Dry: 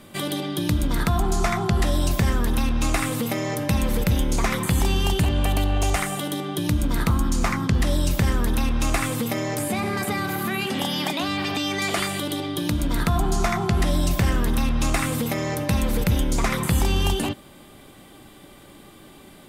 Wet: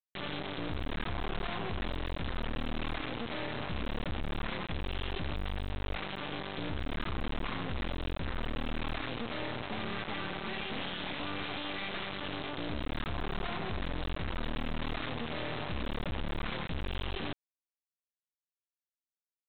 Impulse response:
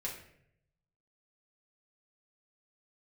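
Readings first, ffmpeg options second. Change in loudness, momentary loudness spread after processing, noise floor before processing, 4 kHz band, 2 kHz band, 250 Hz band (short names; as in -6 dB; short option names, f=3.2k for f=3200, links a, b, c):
-14.0 dB, 1 LU, -47 dBFS, -10.5 dB, -10.0 dB, -15.0 dB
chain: -af "aeval=exprs='(tanh(31.6*val(0)+0.3)-tanh(0.3))/31.6':c=same,aresample=8000,acrusher=bits=4:mix=0:aa=0.000001,aresample=44100,volume=-6dB"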